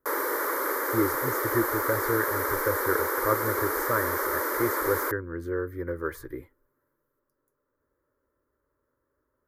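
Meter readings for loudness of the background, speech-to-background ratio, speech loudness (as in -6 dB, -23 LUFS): -27.5 LUFS, -4.0 dB, -31.5 LUFS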